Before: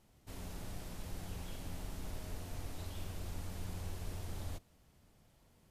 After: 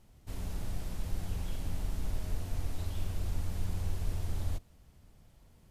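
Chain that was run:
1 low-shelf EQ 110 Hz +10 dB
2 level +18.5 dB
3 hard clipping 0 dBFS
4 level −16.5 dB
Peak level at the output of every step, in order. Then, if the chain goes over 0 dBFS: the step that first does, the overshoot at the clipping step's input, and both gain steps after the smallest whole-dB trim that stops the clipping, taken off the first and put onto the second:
−22.5, −4.0, −4.0, −20.5 dBFS
no step passes full scale

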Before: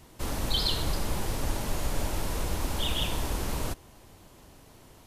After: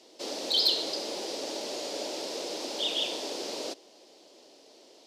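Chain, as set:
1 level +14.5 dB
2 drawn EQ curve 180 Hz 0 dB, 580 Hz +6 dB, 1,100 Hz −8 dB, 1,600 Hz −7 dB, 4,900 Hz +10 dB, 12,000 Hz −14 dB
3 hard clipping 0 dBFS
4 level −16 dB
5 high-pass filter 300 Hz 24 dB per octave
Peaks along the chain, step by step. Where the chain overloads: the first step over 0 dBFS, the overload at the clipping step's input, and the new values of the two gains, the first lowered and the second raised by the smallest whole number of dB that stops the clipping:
+0.5, +5.5, 0.0, −16.0, −13.5 dBFS
step 1, 5.5 dB
step 1 +8.5 dB, step 4 −10 dB

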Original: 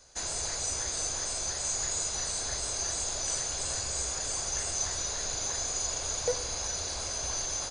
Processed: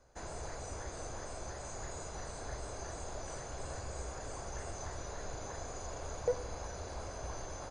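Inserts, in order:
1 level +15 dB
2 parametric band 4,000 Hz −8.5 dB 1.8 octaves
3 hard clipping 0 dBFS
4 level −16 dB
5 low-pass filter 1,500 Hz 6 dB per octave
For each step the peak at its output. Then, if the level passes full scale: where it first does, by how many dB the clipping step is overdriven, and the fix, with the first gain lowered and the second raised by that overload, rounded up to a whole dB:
−2.5, −4.5, −4.5, −20.5, −21.5 dBFS
no step passes full scale

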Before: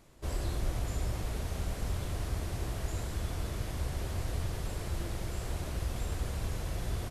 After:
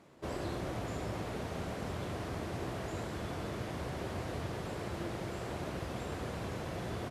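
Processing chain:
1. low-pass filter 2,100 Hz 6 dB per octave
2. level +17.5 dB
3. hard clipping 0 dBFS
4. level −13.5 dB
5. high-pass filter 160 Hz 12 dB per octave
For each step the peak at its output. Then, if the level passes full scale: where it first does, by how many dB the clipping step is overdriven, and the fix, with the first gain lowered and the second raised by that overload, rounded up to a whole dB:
−21.5, −4.0, −4.0, −17.5, −25.5 dBFS
no step passes full scale

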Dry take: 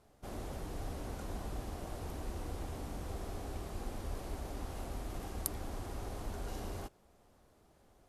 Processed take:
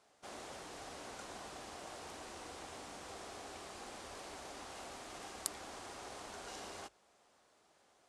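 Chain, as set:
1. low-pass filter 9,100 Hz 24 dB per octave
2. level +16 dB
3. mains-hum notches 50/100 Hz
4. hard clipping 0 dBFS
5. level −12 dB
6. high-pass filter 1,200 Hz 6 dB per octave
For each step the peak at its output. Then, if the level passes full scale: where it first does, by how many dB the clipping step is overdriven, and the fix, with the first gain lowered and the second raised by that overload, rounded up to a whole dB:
−18.0, −2.0, −2.0, −2.0, −14.0, −15.5 dBFS
no step passes full scale

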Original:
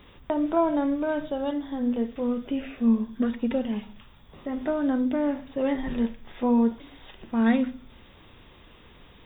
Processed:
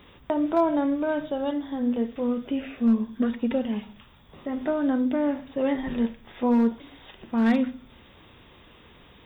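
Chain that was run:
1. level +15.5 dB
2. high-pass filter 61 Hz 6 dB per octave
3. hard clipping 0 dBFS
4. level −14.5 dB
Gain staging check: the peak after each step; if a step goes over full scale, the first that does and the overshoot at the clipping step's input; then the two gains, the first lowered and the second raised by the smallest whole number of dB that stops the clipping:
+5.0, +5.0, 0.0, −14.5 dBFS
step 1, 5.0 dB
step 1 +10.5 dB, step 4 −9.5 dB

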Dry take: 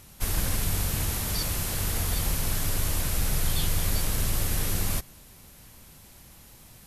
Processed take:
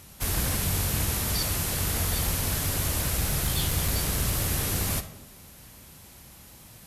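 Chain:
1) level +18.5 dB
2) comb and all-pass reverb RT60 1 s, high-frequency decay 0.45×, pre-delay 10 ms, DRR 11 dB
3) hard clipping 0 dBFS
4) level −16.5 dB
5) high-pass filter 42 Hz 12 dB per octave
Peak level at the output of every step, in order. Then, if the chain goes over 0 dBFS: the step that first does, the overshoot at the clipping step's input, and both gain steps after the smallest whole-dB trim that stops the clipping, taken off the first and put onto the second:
+5.0, +5.0, 0.0, −16.5, −14.0 dBFS
step 1, 5.0 dB
step 1 +13.5 dB, step 4 −11.5 dB

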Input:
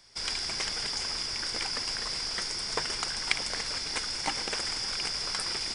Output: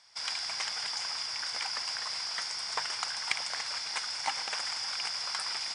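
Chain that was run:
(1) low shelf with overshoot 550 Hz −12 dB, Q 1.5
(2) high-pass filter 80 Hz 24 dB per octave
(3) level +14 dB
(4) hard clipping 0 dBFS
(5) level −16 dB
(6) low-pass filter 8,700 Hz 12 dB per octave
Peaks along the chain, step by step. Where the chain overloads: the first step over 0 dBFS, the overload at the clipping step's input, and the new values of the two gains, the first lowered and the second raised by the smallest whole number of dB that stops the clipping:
−5.5, −5.5, +8.5, 0.0, −16.0, −15.0 dBFS
step 3, 8.5 dB
step 3 +5 dB, step 5 −7 dB

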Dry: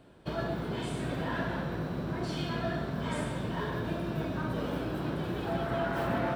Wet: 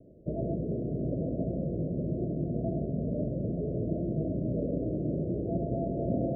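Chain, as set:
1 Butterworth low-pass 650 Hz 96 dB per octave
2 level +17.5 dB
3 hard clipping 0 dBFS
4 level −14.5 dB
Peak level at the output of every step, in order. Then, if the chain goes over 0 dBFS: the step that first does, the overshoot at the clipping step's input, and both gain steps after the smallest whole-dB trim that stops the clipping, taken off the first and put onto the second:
−21.0, −3.5, −3.5, −18.0 dBFS
no step passes full scale

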